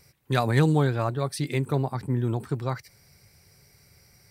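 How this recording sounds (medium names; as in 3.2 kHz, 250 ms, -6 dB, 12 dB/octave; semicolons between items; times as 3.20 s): noise floor -60 dBFS; spectral tilt -6.5 dB/octave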